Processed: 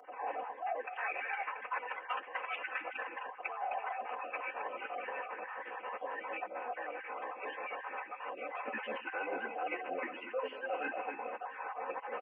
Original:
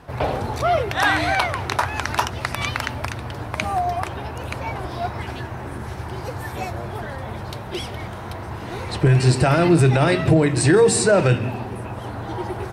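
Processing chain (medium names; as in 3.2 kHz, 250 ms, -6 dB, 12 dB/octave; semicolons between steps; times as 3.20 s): random holes in the spectrogram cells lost 32%; Chebyshev low-pass 4.5 kHz, order 8; treble shelf 3.5 kHz +4.5 dB; delay 274 ms -14.5 dB; formant-preserving pitch shift -10.5 st; high-pass 460 Hz 24 dB/octave; comb 4.1 ms, depth 69%; speed mistake 24 fps film run at 25 fps; reverse; compression 6:1, threshold -33 dBFS, peak gain reduction 20 dB; reverse; trim -3 dB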